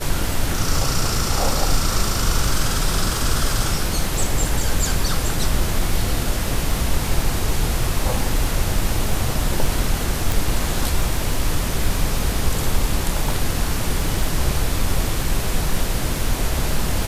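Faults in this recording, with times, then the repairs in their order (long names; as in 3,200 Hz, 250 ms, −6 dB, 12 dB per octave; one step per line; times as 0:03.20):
surface crackle 37 per second −25 dBFS
0:10.32: click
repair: click removal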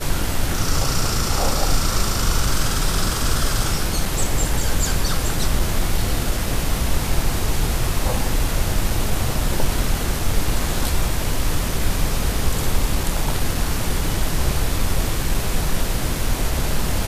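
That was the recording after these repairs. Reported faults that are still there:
0:10.32: click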